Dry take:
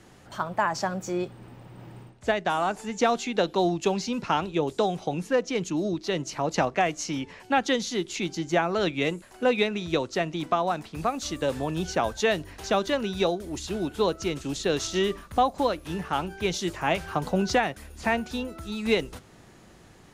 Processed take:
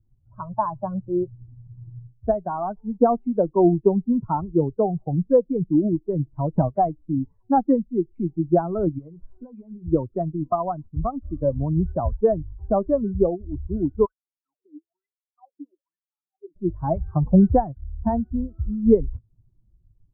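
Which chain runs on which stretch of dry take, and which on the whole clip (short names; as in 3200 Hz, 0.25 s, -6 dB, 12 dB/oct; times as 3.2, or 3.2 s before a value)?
8.98–9.86 delta modulation 64 kbps, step -39 dBFS + compressor 16:1, threshold -32 dBFS + doubler 13 ms -8 dB
14.05–16.56 compressor 4:1, threshold -25 dBFS + wah 1.1 Hz 290–3200 Hz, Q 16
whole clip: per-bin expansion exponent 2; steep low-pass 1100 Hz 36 dB/oct; tilt -3.5 dB/oct; gain +6 dB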